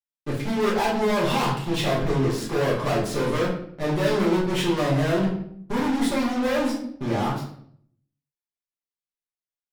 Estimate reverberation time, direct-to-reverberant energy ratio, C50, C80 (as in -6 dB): 0.65 s, -7.5 dB, 4.5 dB, 8.5 dB